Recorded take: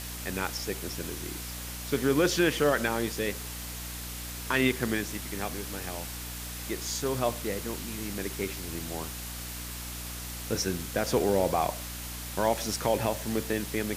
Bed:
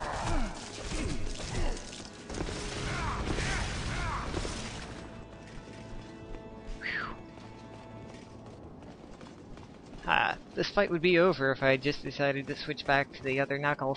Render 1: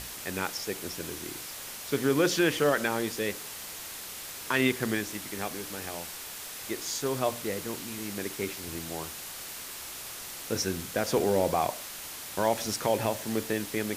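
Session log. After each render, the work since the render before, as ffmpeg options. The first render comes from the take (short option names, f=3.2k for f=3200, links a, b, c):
-af "bandreject=f=60:t=h:w=6,bandreject=f=120:t=h:w=6,bandreject=f=180:t=h:w=6,bandreject=f=240:t=h:w=6,bandreject=f=300:t=h:w=6"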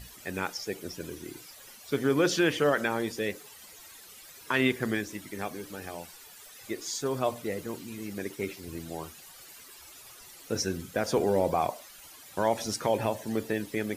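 -af "afftdn=nr=14:nf=-41"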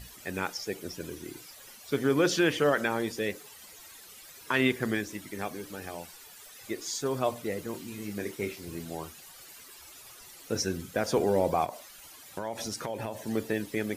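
-filter_complex "[0:a]asettb=1/sr,asplit=3[a][b][c];[a]atrim=end=7.714[d];[b]atrim=start=7.71:end=8.95,asetpts=PTS-STARTPTS,afade=t=in:d=0.004:c=qsin,afade=t=out:st=1.236:d=0.004:c=qsin,asplit=2[e][f];[f]adelay=29,volume=-8dB[g];[e][g]amix=inputs=2:normalize=0,atrim=end_sample=54684[h];[c]atrim=start=8.946[i];[d][h]acrossfade=d=0.004:c1=hsin:c2=qsin[j];[j][i]acrossfade=d=0.004:c1=qsin:c2=hsin,asplit=3[k][l][m];[k]afade=t=out:st=11.64:d=0.02[n];[l]acompressor=threshold=-31dB:ratio=4:attack=3.2:release=140:knee=1:detection=peak,afade=t=in:st=11.64:d=0.02,afade=t=out:st=13.21:d=0.02[o];[m]afade=t=in:st=13.21:d=0.02[p];[n][o][p]amix=inputs=3:normalize=0"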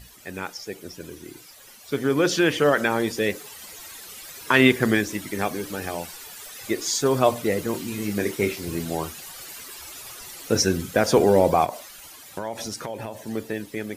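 -af "dynaudnorm=f=420:g=13:m=11dB"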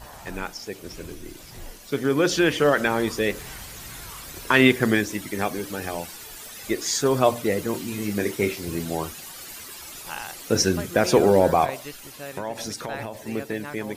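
-filter_complex "[1:a]volume=-9dB[a];[0:a][a]amix=inputs=2:normalize=0"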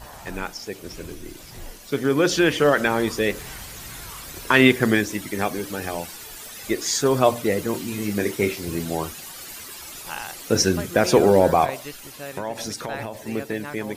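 -af "volume=1.5dB"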